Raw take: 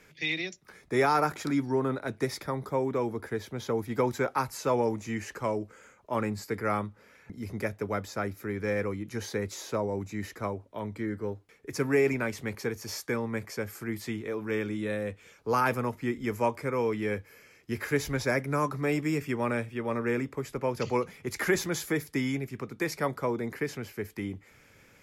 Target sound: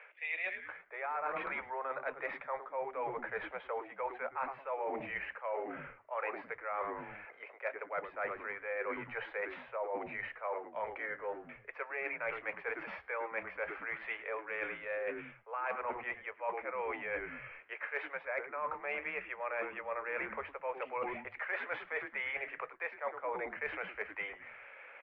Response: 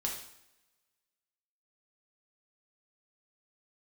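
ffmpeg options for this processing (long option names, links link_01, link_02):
-filter_complex "[0:a]asuperpass=centerf=1200:order=12:qfactor=0.54,asplit=5[link_01][link_02][link_03][link_04][link_05];[link_02]adelay=108,afreqshift=-130,volume=-15dB[link_06];[link_03]adelay=216,afreqshift=-260,volume=-22.1dB[link_07];[link_04]adelay=324,afreqshift=-390,volume=-29.3dB[link_08];[link_05]adelay=432,afreqshift=-520,volume=-36.4dB[link_09];[link_01][link_06][link_07][link_08][link_09]amix=inputs=5:normalize=0,areverse,acompressor=threshold=-43dB:ratio=10,areverse,volume=8dB"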